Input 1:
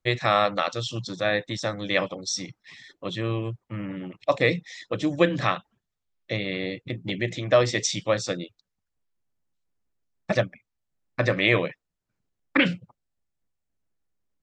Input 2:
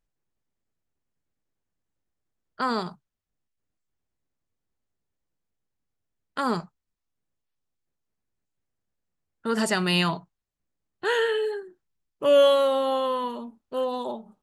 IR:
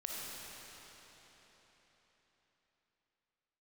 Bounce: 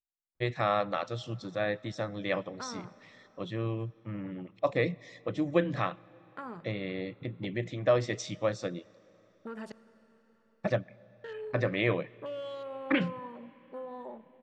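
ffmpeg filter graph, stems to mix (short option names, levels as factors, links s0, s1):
-filter_complex "[0:a]highshelf=f=2400:g=-11,adelay=350,volume=0.531,asplit=2[s0][s1];[s1]volume=0.0668[s2];[1:a]afwtdn=0.0141,acompressor=threshold=0.0398:ratio=5,volume=0.266,asplit=3[s3][s4][s5];[s3]atrim=end=9.72,asetpts=PTS-STARTPTS,afade=t=out:st=9.716:d=0.004:c=hsin[s6];[s4]atrim=start=9.72:end=11.24,asetpts=PTS-STARTPTS,volume=0[s7];[s5]atrim=start=11.24,asetpts=PTS-STARTPTS,afade=t=in:d=0.004:c=hsin[s8];[s6][s7][s8]concat=n=3:v=0:a=1,asplit=2[s9][s10];[s10]volume=0.188[s11];[2:a]atrim=start_sample=2205[s12];[s2][s11]amix=inputs=2:normalize=0[s13];[s13][s12]afir=irnorm=-1:irlink=0[s14];[s0][s9][s14]amix=inputs=3:normalize=0"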